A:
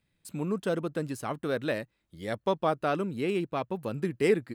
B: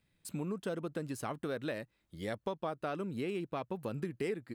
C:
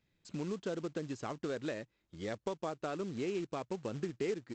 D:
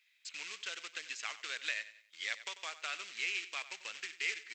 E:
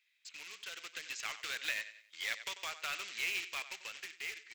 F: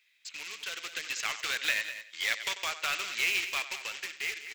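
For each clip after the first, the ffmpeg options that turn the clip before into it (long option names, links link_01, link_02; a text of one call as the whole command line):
ffmpeg -i in.wav -af "acompressor=threshold=-35dB:ratio=4" out.wav
ffmpeg -i in.wav -af "equalizer=frequency=370:width=1.9:gain=4,aresample=16000,acrusher=bits=4:mode=log:mix=0:aa=0.000001,aresample=44100,volume=-2.5dB" out.wav
ffmpeg -i in.wav -af "highpass=frequency=2300:width_type=q:width=2.4,aecho=1:1:93|186|279:0.178|0.0658|0.0243,volume=7.5dB" out.wav
ffmpeg -i in.wav -filter_complex "[0:a]asplit=2[link_01][link_02];[link_02]aeval=exprs='(mod(56.2*val(0)+1,2)-1)/56.2':channel_layout=same,volume=-8dB[link_03];[link_01][link_03]amix=inputs=2:normalize=0,dynaudnorm=framelen=210:gausssize=9:maxgain=7.5dB,volume=-7.5dB" out.wav
ffmpeg -i in.wav -af "aecho=1:1:199:0.251,volume=7.5dB" out.wav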